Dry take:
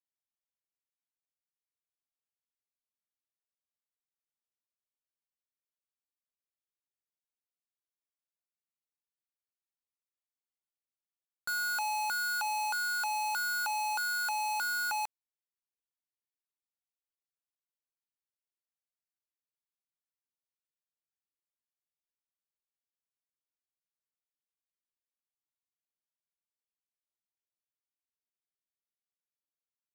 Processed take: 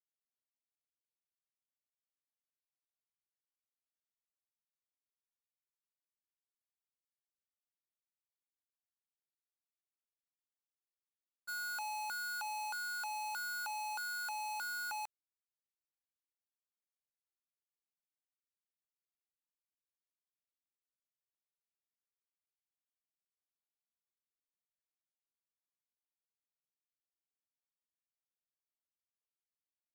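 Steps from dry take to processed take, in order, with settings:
downward expander −25 dBFS
level +7 dB

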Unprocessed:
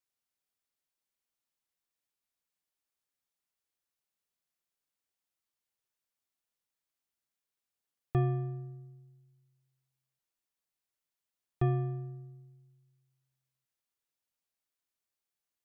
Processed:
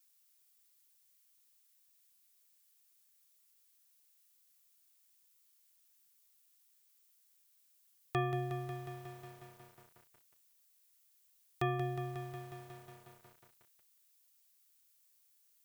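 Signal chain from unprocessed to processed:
spectral tilt +4.5 dB per octave
feedback echo at a low word length 181 ms, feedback 80%, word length 10 bits, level −8 dB
level +3.5 dB

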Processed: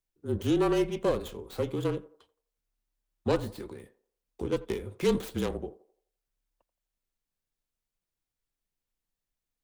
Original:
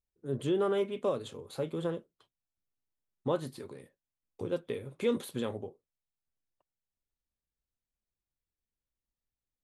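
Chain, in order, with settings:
stylus tracing distortion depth 0.4 ms
feedback echo with a band-pass in the loop 85 ms, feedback 43%, band-pass 700 Hz, level −17 dB
frequency shifter −34 Hz
level +3.5 dB

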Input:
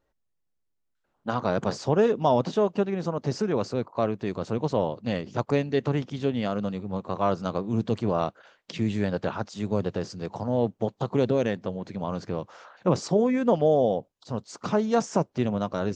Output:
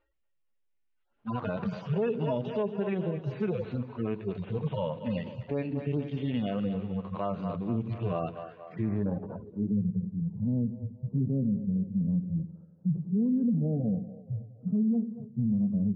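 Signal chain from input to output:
harmonic-percussive split with one part muted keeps harmonic
on a send: echo with a time of its own for lows and highs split 400 Hz, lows 94 ms, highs 234 ms, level −13 dB
on the sum: low-pass filter sweep 2,700 Hz → 200 Hz, 0:08.56–0:09.83
brickwall limiter −21 dBFS, peak gain reduction 10 dB

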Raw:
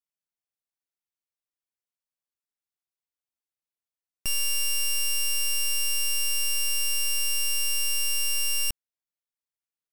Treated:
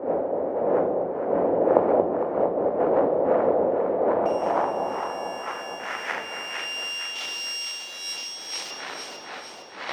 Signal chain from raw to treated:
wind on the microphone 510 Hz −26 dBFS
camcorder AGC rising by 13 dB per second
harmonic generator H 3 −8 dB, 7 −22 dB, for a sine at −1 dBFS
band-pass filter sweep 540 Hz → 4,100 Hz, 0:03.90–0:07.43
delay that swaps between a low-pass and a high-pass 229 ms, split 870 Hz, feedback 73%, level −3.5 dB
convolution reverb RT60 1.1 s, pre-delay 3 ms, DRR 10 dB
level +2 dB

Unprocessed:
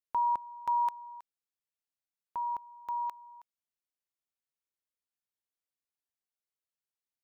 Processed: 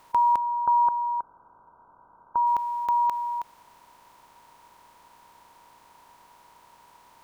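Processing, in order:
compressor on every frequency bin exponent 0.4
0:00.37–0:02.47: linear-phase brick-wall low-pass 1,600 Hz
level +7.5 dB

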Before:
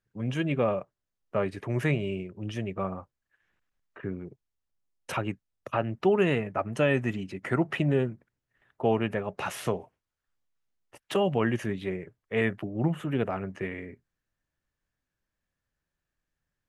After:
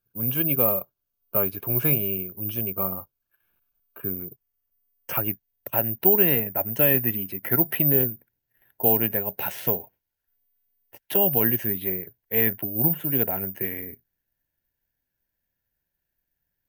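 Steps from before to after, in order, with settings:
Butterworth band-reject 1,900 Hz, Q 4.1, from 0:04.13 3,900 Hz, from 0:05.20 1,200 Hz
bad sample-rate conversion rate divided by 3×, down filtered, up zero stuff

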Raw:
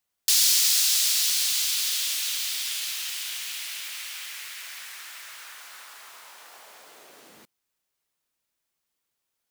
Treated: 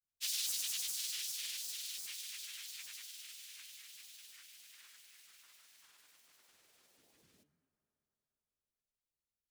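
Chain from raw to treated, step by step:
guitar amp tone stack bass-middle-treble 10-0-1
hum removal 108.4 Hz, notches 30
granular cloud, pitch spread up and down by 7 semitones
on a send: convolution reverb RT60 4.7 s, pre-delay 5 ms, DRR 14 dB
on the sum: level +5.5 dB

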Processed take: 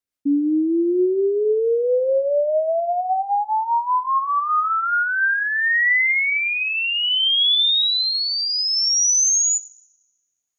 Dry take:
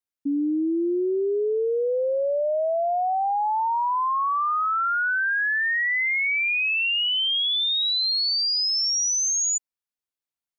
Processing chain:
rotating-speaker cabinet horn 5 Hz, later 0.6 Hz, at 0:04.78
coupled-rooms reverb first 0.64 s, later 1.6 s, from −18 dB, DRR 15.5 dB
level +6.5 dB

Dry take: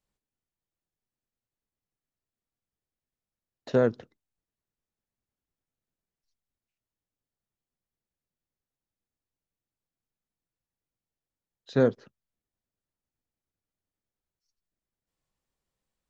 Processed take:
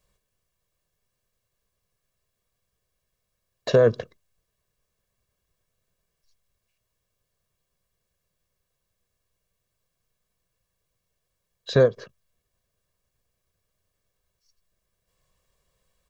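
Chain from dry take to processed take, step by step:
comb filter 1.8 ms, depth 67%
boost into a limiter +19 dB
every ending faded ahead of time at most 380 dB per second
level −7.5 dB

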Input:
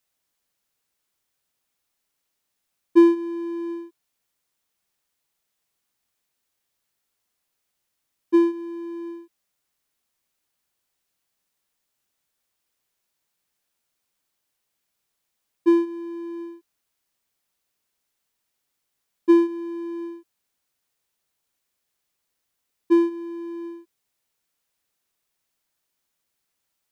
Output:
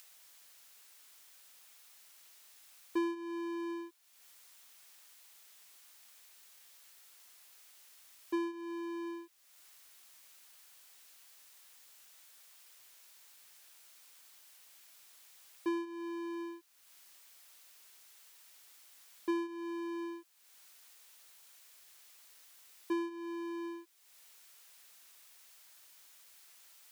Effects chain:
downward compressor 2.5 to 1, threshold −33 dBFS, peak gain reduction 15.5 dB
high-pass filter 1,300 Hz 6 dB per octave
upward compression, threshold −54 dBFS
level +6.5 dB

